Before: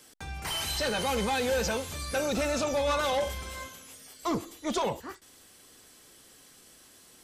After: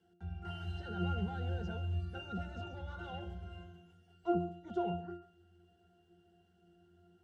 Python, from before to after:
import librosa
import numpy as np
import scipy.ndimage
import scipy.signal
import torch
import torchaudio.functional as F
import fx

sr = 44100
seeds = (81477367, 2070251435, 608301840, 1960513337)

y = fx.octave_resonator(x, sr, note='F', decay_s=0.49)
y = y + 10.0 ** (-16.5 / 20.0) * np.pad(y, (int(139 * sr / 1000.0), 0))[:len(y)]
y = F.gain(torch.from_numpy(y), 11.5).numpy()